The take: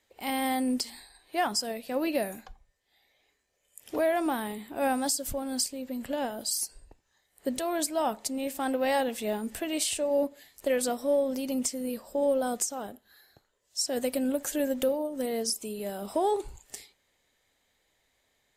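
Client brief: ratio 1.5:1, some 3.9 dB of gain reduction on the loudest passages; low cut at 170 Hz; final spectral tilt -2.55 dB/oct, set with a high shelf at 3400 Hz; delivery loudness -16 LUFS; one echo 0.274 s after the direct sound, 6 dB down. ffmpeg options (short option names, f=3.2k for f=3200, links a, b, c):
-af "highpass=170,highshelf=f=3.4k:g=-4.5,acompressor=threshold=-33dB:ratio=1.5,aecho=1:1:274:0.501,volume=17dB"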